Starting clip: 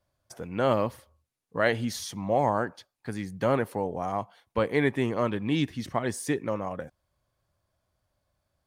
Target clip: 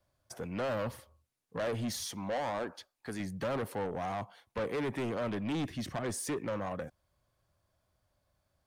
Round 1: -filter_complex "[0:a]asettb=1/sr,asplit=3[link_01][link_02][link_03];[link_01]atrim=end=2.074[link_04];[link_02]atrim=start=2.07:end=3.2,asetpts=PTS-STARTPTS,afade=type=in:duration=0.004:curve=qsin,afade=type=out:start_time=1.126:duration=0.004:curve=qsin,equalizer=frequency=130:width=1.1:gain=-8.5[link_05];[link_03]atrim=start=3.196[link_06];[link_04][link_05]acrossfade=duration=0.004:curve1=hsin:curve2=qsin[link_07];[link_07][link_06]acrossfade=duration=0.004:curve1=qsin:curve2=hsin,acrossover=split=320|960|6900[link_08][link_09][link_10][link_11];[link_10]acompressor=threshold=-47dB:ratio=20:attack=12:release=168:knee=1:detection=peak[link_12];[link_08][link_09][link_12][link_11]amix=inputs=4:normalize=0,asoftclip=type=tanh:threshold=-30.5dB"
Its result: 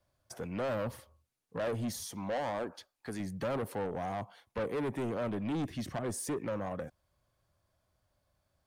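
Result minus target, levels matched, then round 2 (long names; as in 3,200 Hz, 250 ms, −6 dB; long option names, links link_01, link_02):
downward compressor: peak gain reduction +8.5 dB
-filter_complex "[0:a]asettb=1/sr,asplit=3[link_01][link_02][link_03];[link_01]atrim=end=2.074[link_04];[link_02]atrim=start=2.07:end=3.2,asetpts=PTS-STARTPTS,afade=type=in:duration=0.004:curve=qsin,afade=type=out:start_time=1.126:duration=0.004:curve=qsin,equalizer=frequency=130:width=1.1:gain=-8.5[link_05];[link_03]atrim=start=3.196[link_06];[link_04][link_05]acrossfade=duration=0.004:curve1=hsin:curve2=qsin[link_07];[link_07][link_06]acrossfade=duration=0.004:curve1=qsin:curve2=hsin,acrossover=split=320|960|6900[link_08][link_09][link_10][link_11];[link_10]acompressor=threshold=-38dB:ratio=20:attack=12:release=168:knee=1:detection=peak[link_12];[link_08][link_09][link_12][link_11]amix=inputs=4:normalize=0,asoftclip=type=tanh:threshold=-30.5dB"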